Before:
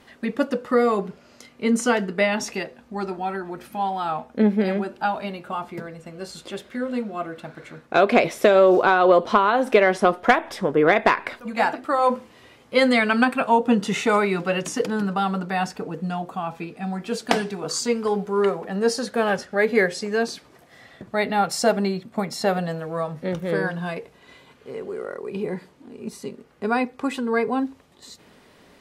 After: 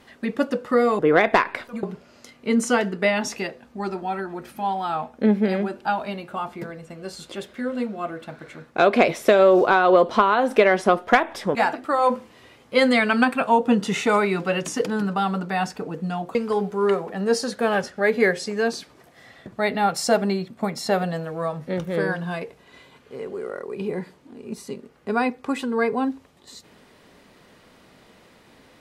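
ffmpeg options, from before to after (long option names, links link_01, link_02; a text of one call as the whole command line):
ffmpeg -i in.wav -filter_complex "[0:a]asplit=5[link_01][link_02][link_03][link_04][link_05];[link_01]atrim=end=0.992[link_06];[link_02]atrim=start=10.708:end=11.552[link_07];[link_03]atrim=start=0.988:end=10.712[link_08];[link_04]atrim=start=11.548:end=16.352[link_09];[link_05]atrim=start=17.898[link_10];[link_06][link_07]acrossfade=duration=0.004:curve1=hsin:curve2=hsin[link_11];[link_11][link_08]acrossfade=duration=0.004:curve1=hsin:curve2=hsin[link_12];[link_12][link_09]acrossfade=duration=0.004:curve1=hsin:curve2=hsin[link_13];[link_13][link_10]acrossfade=duration=0.004:curve1=hsin:curve2=hsin" out.wav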